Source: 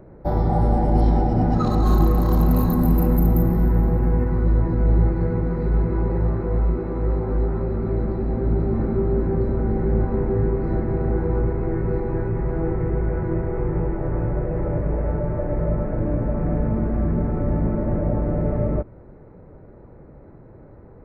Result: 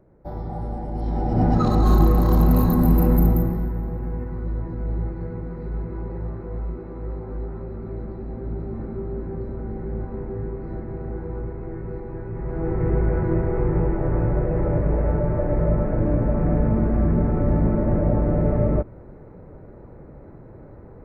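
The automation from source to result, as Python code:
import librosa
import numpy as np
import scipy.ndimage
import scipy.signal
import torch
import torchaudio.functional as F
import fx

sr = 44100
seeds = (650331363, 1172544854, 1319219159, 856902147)

y = fx.gain(x, sr, db=fx.line((0.98, -11.0), (1.43, 1.0), (3.24, 1.0), (3.75, -9.0), (12.23, -9.0), (12.89, 2.0)))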